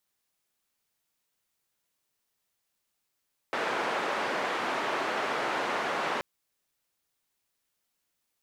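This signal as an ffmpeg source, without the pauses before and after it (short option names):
-f lavfi -i "anoisesrc=c=white:d=2.68:r=44100:seed=1,highpass=f=340,lowpass=f=1400,volume=-13dB"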